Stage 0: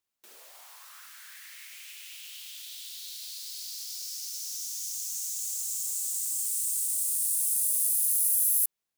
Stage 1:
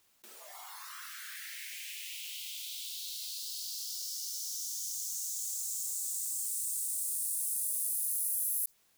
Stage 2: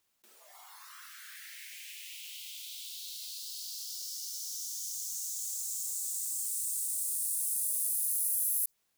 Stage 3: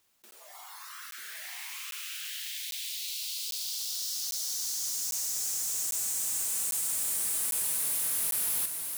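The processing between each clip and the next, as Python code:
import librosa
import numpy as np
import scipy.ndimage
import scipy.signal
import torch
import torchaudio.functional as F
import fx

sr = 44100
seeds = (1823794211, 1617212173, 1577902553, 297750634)

y1 = fx.noise_reduce_blind(x, sr, reduce_db=12)
y1 = fx.env_flatten(y1, sr, amount_pct=50)
y1 = F.gain(torch.from_numpy(y1), -8.5).numpy()
y2 = np.clip(y1, -10.0 ** (-22.5 / 20.0), 10.0 ** (-22.5 / 20.0))
y2 = fx.upward_expand(y2, sr, threshold_db=-52.0, expansion=1.5)
y2 = F.gain(torch.from_numpy(y2), 2.5).numpy()
y3 = np.clip(10.0 ** (35.5 / 20.0) * y2, -1.0, 1.0) / 10.0 ** (35.5 / 20.0)
y3 = y3 + 10.0 ** (-4.5 / 20.0) * np.pad(y3, (int(938 * sr / 1000.0), 0))[:len(y3)]
y3 = fx.buffer_crackle(y3, sr, first_s=0.31, period_s=0.8, block=512, kind='zero')
y3 = F.gain(torch.from_numpy(y3), 6.0).numpy()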